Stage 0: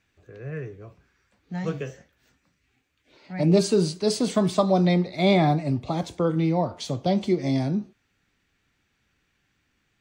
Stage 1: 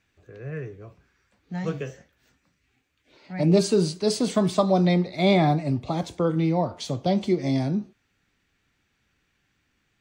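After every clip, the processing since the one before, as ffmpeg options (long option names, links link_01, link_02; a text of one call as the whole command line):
ffmpeg -i in.wav -af anull out.wav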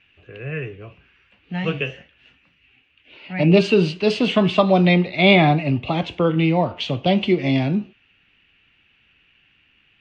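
ffmpeg -i in.wav -af "lowpass=frequency=2800:width_type=q:width=7.9,volume=4.5dB" out.wav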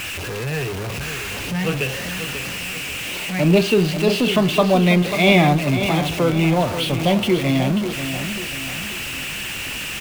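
ffmpeg -i in.wav -filter_complex "[0:a]aeval=exprs='val(0)+0.5*0.0891*sgn(val(0))':channel_layout=same,asplit=2[link_01][link_02];[link_02]aecho=0:1:539|1078|1617|2156|2695:0.335|0.144|0.0619|0.0266|0.0115[link_03];[link_01][link_03]amix=inputs=2:normalize=0,volume=-2dB" out.wav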